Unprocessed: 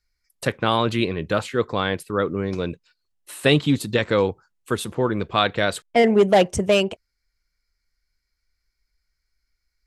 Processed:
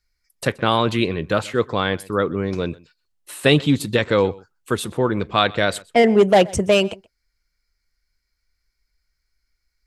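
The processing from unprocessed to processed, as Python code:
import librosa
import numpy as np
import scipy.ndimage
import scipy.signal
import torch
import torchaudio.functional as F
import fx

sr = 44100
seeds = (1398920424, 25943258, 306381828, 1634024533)

y = x + 10.0 ** (-23.0 / 20.0) * np.pad(x, (int(126 * sr / 1000.0), 0))[:len(x)]
y = F.gain(torch.from_numpy(y), 2.0).numpy()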